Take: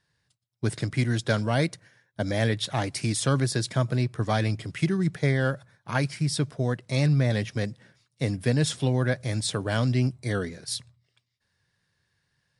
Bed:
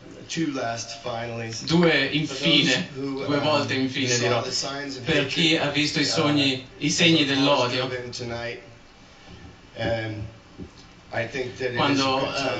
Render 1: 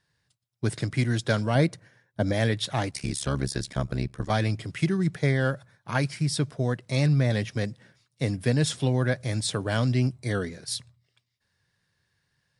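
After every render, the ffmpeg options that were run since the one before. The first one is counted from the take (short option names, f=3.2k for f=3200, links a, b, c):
-filter_complex "[0:a]asettb=1/sr,asplit=3[a][b][c];[a]atrim=end=1.554[d];[b]atrim=start=1.55:end=2.33,asetpts=PTS-STARTPTS,afade=t=in:d=0.004:c=qsin,afade=t=out:st=0.776:d=0.004:c=qsin,tiltshelf=f=1.4k:g=3.5[e];[c]atrim=start=2.326[f];[d][e]acrossfade=d=0.004:c1=hsin:c2=qsin[g];[g][f]acrossfade=d=0.004:c1=qsin:c2=hsin,asettb=1/sr,asplit=3[h][i][j];[h]atrim=end=2.914[k];[i]atrim=start=2.91:end=4.3,asetpts=PTS-STARTPTS,afade=t=in:d=0.004:c=qsin,afade=t=out:st=1.386:d=0.004:c=qsin,tremolo=f=69:d=0.919[l];[j]atrim=start=4.296[m];[k][l]acrossfade=d=0.004:c1=hsin:c2=qsin[n];[n][m]acrossfade=d=0.004:c1=qsin:c2=hsin"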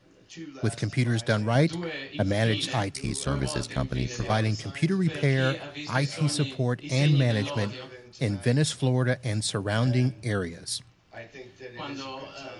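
-filter_complex "[1:a]volume=-15dB[a];[0:a][a]amix=inputs=2:normalize=0"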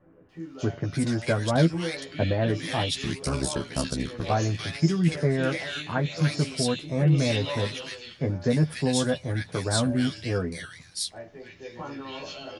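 -filter_complex "[0:a]asplit=2[a][b];[b]adelay=12,volume=-4.5dB[c];[a][c]amix=inputs=2:normalize=0,acrossover=split=1700[d][e];[e]adelay=290[f];[d][f]amix=inputs=2:normalize=0"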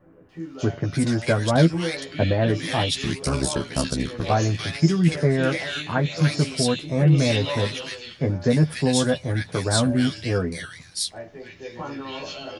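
-af "volume=4dB"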